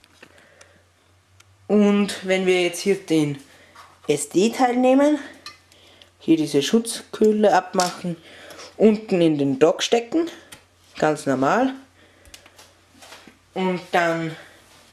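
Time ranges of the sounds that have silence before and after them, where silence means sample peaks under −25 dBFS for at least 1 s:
0:01.70–0:12.34

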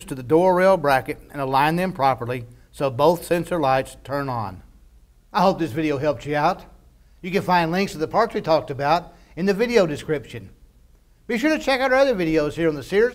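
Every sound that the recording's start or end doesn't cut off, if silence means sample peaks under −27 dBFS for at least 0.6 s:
0:05.34–0:06.53
0:07.24–0:10.38

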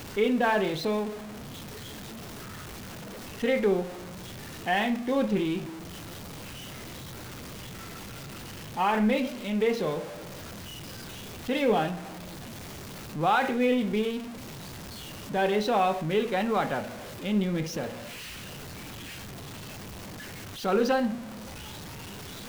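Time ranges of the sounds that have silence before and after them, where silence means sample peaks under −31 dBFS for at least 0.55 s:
0:03.43–0:03.85
0:04.67–0:05.64
0:08.77–0:10.02
0:11.49–0:11.95
0:13.16–0:14.19
0:15.31–0:17.89
0:20.65–0:21.16

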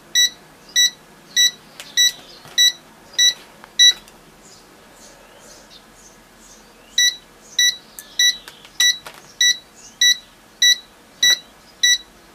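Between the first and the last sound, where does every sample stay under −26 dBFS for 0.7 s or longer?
0:04.08–0:06.98

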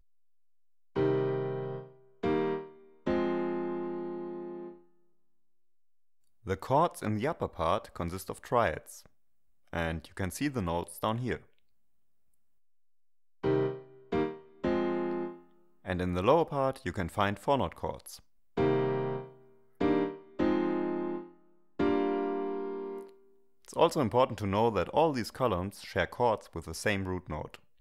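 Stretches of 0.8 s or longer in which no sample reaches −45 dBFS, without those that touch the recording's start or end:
0:04.75–0:06.46
0:11.38–0:13.44

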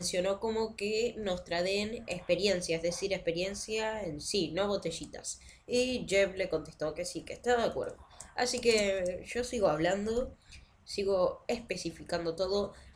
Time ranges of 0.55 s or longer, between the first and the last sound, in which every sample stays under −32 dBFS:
0:10.24–0:10.92

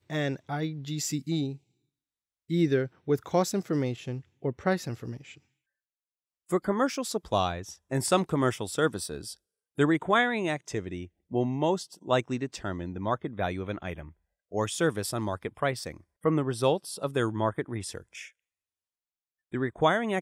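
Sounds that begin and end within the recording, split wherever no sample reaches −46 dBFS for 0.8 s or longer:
0:02.50–0:05.38
0:06.49–0:18.28

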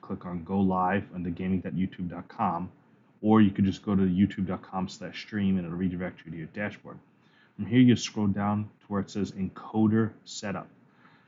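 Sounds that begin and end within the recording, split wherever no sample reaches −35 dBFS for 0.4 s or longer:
0:03.24–0:06.92
0:07.59–0:10.62

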